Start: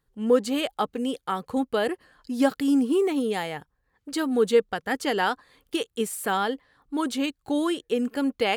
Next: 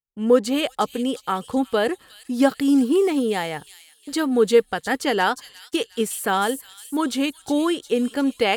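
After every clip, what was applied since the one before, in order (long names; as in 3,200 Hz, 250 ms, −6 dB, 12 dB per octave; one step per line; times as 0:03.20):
downward expander −47 dBFS
delay with a high-pass on its return 359 ms, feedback 49%, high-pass 4,900 Hz, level −5.5 dB
level +4 dB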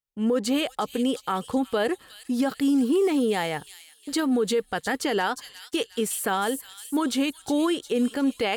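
brickwall limiter −16 dBFS, peak gain reduction 11 dB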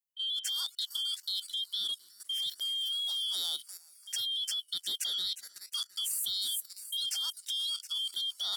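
band-splitting scrambler in four parts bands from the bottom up 2413
first-order pre-emphasis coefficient 0.97
output level in coarse steps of 12 dB
level +2.5 dB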